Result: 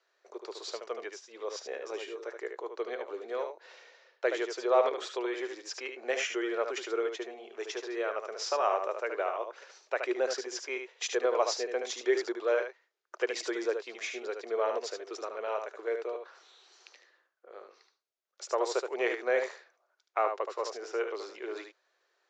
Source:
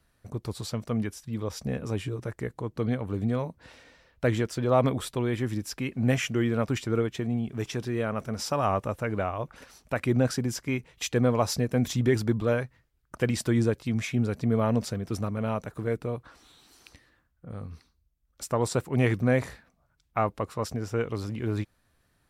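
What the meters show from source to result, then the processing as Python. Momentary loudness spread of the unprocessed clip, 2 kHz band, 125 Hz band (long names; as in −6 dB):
10 LU, −1.0 dB, below −40 dB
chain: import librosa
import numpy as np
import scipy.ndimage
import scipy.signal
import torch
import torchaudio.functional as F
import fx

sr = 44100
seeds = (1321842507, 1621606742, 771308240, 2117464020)

p1 = scipy.signal.sosfilt(scipy.signal.cheby1(5, 1.0, [370.0, 6900.0], 'bandpass', fs=sr, output='sos'), x)
p2 = p1 + fx.echo_single(p1, sr, ms=74, db=-6.5, dry=0)
y = p2 * 10.0 ** (-1.5 / 20.0)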